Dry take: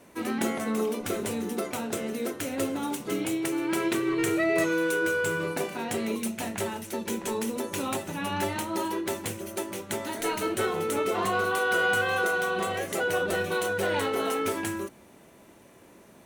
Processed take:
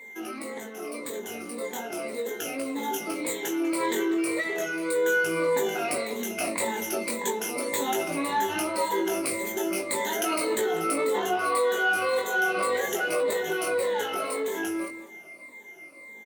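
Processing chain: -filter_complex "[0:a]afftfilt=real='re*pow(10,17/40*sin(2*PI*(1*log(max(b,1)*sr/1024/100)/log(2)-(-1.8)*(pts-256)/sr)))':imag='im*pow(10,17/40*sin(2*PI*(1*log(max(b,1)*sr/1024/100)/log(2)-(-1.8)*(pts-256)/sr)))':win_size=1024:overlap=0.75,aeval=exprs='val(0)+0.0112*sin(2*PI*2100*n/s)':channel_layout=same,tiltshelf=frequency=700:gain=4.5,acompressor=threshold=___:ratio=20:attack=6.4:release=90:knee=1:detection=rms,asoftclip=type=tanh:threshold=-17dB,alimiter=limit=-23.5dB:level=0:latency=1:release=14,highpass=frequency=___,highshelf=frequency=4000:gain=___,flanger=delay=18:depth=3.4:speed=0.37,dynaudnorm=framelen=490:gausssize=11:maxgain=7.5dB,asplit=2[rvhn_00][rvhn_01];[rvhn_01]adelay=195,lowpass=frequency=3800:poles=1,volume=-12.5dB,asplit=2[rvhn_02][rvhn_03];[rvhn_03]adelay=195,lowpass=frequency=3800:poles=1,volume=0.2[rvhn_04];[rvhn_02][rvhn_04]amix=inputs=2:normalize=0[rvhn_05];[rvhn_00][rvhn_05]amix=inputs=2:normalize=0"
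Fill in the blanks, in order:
-23dB, 380, 6.5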